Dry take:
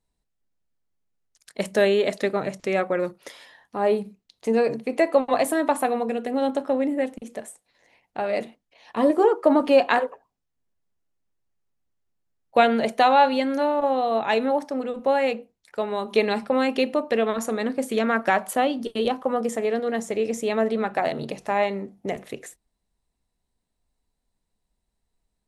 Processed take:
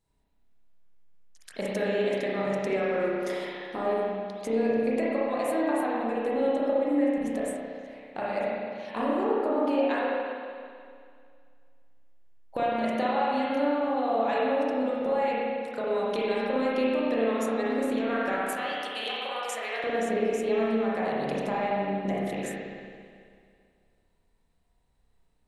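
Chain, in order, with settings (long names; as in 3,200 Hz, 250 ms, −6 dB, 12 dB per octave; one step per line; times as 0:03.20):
0:18.32–0:19.84: high-pass filter 1,300 Hz 12 dB per octave
downward compressor 5 to 1, threshold −33 dBFS, peak gain reduction 19 dB
spring reverb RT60 2.2 s, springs 31/55 ms, chirp 70 ms, DRR −7 dB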